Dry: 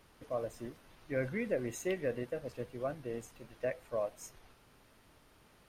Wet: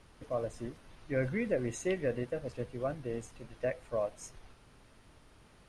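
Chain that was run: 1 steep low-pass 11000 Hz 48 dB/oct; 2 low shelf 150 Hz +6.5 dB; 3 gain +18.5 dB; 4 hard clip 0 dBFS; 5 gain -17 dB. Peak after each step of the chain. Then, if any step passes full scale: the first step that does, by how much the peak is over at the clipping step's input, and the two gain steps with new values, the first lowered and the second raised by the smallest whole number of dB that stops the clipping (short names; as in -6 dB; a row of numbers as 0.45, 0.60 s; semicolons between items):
-21.5, -20.5, -2.0, -2.0, -19.0 dBFS; no overload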